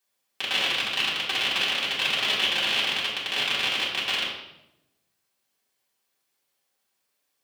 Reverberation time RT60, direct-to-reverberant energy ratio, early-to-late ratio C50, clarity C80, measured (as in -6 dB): 0.85 s, -8.0 dB, 3.0 dB, 5.5 dB